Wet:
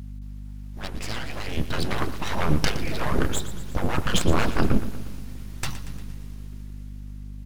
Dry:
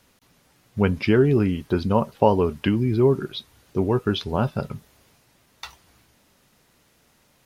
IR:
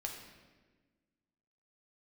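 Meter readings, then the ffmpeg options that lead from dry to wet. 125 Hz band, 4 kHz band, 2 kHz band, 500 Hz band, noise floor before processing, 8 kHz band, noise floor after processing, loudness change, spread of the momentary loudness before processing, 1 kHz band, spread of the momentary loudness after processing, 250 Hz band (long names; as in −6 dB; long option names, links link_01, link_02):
−4.0 dB, +3.0 dB, +3.0 dB, −10.0 dB, −62 dBFS, can't be measured, −37 dBFS, −6.0 dB, 18 LU, −3.0 dB, 16 LU, −6.0 dB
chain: -filter_complex "[0:a]afftfilt=real='re*lt(hypot(re,im),0.224)':imag='im*lt(hypot(re,im),0.224)':win_size=1024:overlap=0.75,asubboost=boost=9.5:cutoff=160,dynaudnorm=framelen=270:gausssize=11:maxgain=15.5dB,aeval=exprs='abs(val(0))':channel_layout=same,aeval=exprs='val(0)+0.0224*(sin(2*PI*50*n/s)+sin(2*PI*2*50*n/s)/2+sin(2*PI*3*50*n/s)/3+sin(2*PI*4*50*n/s)/4+sin(2*PI*5*50*n/s)/5)':channel_layout=same,asplit=2[link_01][link_02];[link_02]aecho=0:1:117|234|351|468|585|702:0.211|0.12|0.0687|0.0391|0.0223|0.0127[link_03];[link_01][link_03]amix=inputs=2:normalize=0,volume=-2.5dB"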